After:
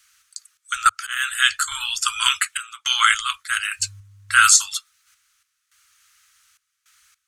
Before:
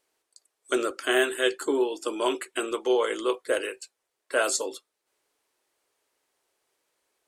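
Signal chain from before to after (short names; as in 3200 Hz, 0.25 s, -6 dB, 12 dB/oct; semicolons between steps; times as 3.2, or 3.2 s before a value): thirty-one-band EQ 630 Hz -9 dB, 1250 Hz +4 dB, 6300 Hz +6 dB; 0.89–1.63 auto swell 0.527 s; 2.23–3.07 HPF 65 Hz -> 240 Hz 12 dB/oct; 3.78–4.46 buzz 100 Hz, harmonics 11, -58 dBFS -8 dB/oct; random-step tremolo, depth 90%; Chebyshev band-stop 100–1300 Hz, order 4; maximiser +20.5 dB; gain -1 dB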